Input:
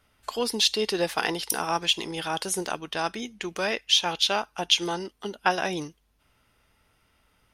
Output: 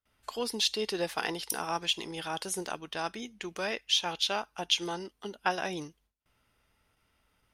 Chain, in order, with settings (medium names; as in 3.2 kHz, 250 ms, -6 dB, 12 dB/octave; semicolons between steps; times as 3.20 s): gate with hold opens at -56 dBFS; trim -6 dB